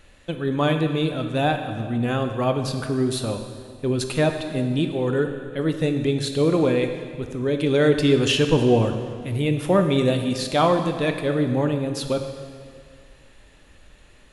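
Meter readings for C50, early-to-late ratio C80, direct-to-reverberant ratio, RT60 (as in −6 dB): 7.0 dB, 8.5 dB, 5.5 dB, 2.0 s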